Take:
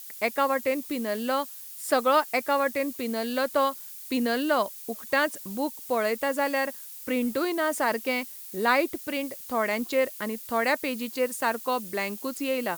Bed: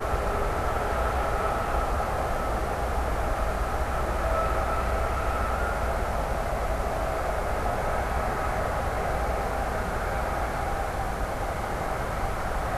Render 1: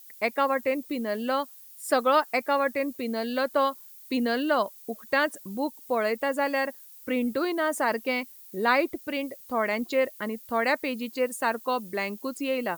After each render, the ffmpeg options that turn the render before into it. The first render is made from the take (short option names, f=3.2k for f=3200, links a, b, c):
-af "afftdn=nr=10:nf=-42"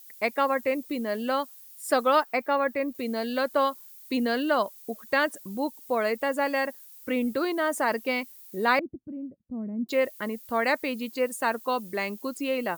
-filter_complex "[0:a]asettb=1/sr,asplit=3[a][b][c];[a]atrim=end=2.234[d];[b]atrim=start=2.23:end=2.95,asetpts=PTS-STARTPTS,afade=t=in:d=0.004:c=qsin,afade=t=out:st=0.716:d=0.004:c=qsin,equalizer=f=9.6k:w=0.46:g=-9.5[e];[c]atrim=start=2.946[f];[d][e]acrossfade=d=0.004:c1=hsin:c2=qsin[g];[g][f]acrossfade=d=0.004:c1=qsin:c2=hsin,asettb=1/sr,asplit=3[h][i][j];[h]atrim=end=8.794[k];[i]atrim=start=8.79:end=9.89,asetpts=PTS-STARTPTS,afade=t=in:d=0.004:c=qsin,afade=t=out:st=1.096:d=0.004:c=qsin,lowpass=f=190:t=q:w=2.2[l];[j]atrim=start=9.886[m];[k][l]acrossfade=d=0.004:c1=hsin:c2=qsin[n];[n][m]acrossfade=d=0.004:c1=qsin:c2=hsin"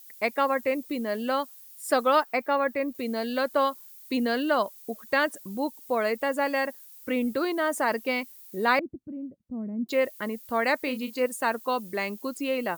-filter_complex "[0:a]asettb=1/sr,asplit=3[a][b][c];[a]atrim=end=10.834[d];[b]atrim=start=10.83:end=11.26,asetpts=PTS-STARTPTS,afade=t=in:d=0.004:c=qsin,afade=t=out:st=0.426:d=0.004:c=qsin,asplit=2[e][f];[f]adelay=32,volume=-10dB[g];[e][g]amix=inputs=2:normalize=0,atrim=end_sample=18963[h];[c]atrim=start=11.256[i];[d][h]acrossfade=d=0.004:c1=hsin:c2=qsin[j];[j][i]acrossfade=d=0.004:c1=qsin:c2=hsin"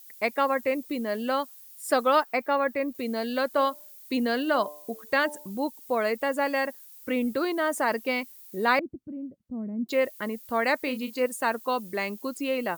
-filter_complex "[0:a]asettb=1/sr,asplit=3[a][b][c];[a]atrim=end=3.534[d];[b]atrim=start=3.53:end=5.5,asetpts=PTS-STARTPTS,afade=t=in:d=0.004:c=qsin,afade=t=out:st=1.966:d=0.004:c=qsin,bandreject=f=148.1:t=h:w=4,bandreject=f=296.2:t=h:w=4,bandreject=f=444.3:t=h:w=4,bandreject=f=592.4:t=h:w=4,bandreject=f=740.5:t=h:w=4,bandreject=f=888.6:t=h:w=4,bandreject=f=1.0367k:t=h:w=4[e];[c]atrim=start=5.496[f];[d][e]acrossfade=d=0.004:c1=hsin:c2=qsin[g];[g][f]acrossfade=d=0.004:c1=qsin:c2=hsin"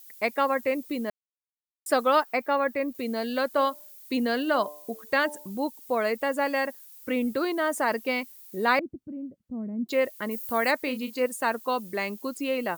-filter_complex "[0:a]asettb=1/sr,asplit=3[a][b][c];[a]atrim=end=10.314[d];[b]atrim=start=10.31:end=10.71,asetpts=PTS-STARTPTS,afade=t=in:d=0.004:c=qsin,afade=t=out:st=0.396:d=0.004:c=qsin,highshelf=f=7.5k:g=11.5[e];[c]atrim=start=10.706[f];[d][e]acrossfade=d=0.004:c1=hsin:c2=qsin[g];[g][f]acrossfade=d=0.004:c1=qsin:c2=hsin,asplit=3[h][i][j];[h]atrim=end=1.1,asetpts=PTS-STARTPTS,afade=t=out:st=1.096:d=0.004:c=hsin[k];[i]atrim=start=1.1:end=1.86,asetpts=PTS-STARTPTS,volume=0[l];[j]atrim=start=1.86,asetpts=PTS-STARTPTS,afade=t=in:d=0.004:c=hsin[m];[k][l][m]concat=n=3:v=0:a=1"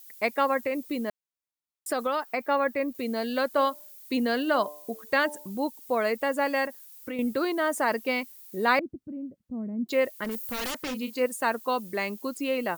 -filter_complex "[0:a]asettb=1/sr,asplit=3[a][b][c];[a]atrim=end=0.584[d];[b]atrim=start=0.58:end=2.46,asetpts=PTS-STARTPTS,afade=t=in:d=0.004:c=qsin,afade=t=out:st=1.876:d=0.004:c=qsin,acompressor=threshold=-23dB:ratio=6:attack=3.2:release=140:knee=1:detection=peak[e];[c]atrim=start=2.456[f];[d][e]acrossfade=d=0.004:c1=hsin:c2=qsin[g];[g][f]acrossfade=d=0.004:c1=qsin:c2=hsin,asettb=1/sr,asplit=3[h][i][j];[h]atrim=end=6.654[k];[i]atrim=start=6.65:end=7.19,asetpts=PTS-STARTPTS,afade=t=in:d=0.004:c=qsin,afade=t=out:st=0.536:d=0.004:c=qsin,acompressor=threshold=-31dB:ratio=4:attack=3.2:release=140:knee=1:detection=peak[l];[j]atrim=start=7.186[m];[k][l]acrossfade=d=0.004:c1=hsin:c2=qsin[n];[n][m]acrossfade=d=0.004:c1=qsin:c2=hsin,asettb=1/sr,asplit=3[o][p][q];[o]atrim=end=10.244[r];[p]atrim=start=10.24:end=10.95,asetpts=PTS-STARTPTS,afade=t=in:d=0.004:c=qsin,afade=t=out:st=0.706:d=0.004:c=qsin,aeval=exprs='0.0473*(abs(mod(val(0)/0.0473+3,4)-2)-1)':c=same[s];[q]atrim=start=10.946[t];[r][s]acrossfade=d=0.004:c1=hsin:c2=qsin[u];[u][t]acrossfade=d=0.004:c1=qsin:c2=hsin"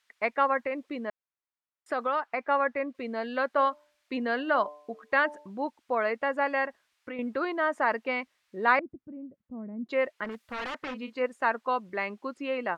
-af "lowpass=1.6k,tiltshelf=f=800:g=-7"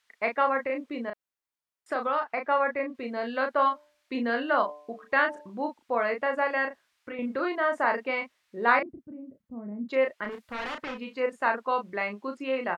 -filter_complex "[0:a]asplit=2[a][b];[b]adelay=34,volume=-5.5dB[c];[a][c]amix=inputs=2:normalize=0"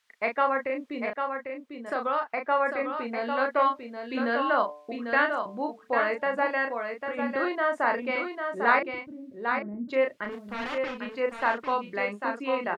-af "aecho=1:1:798:0.501"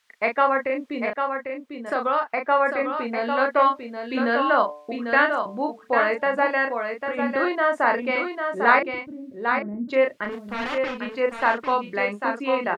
-af "volume=5dB"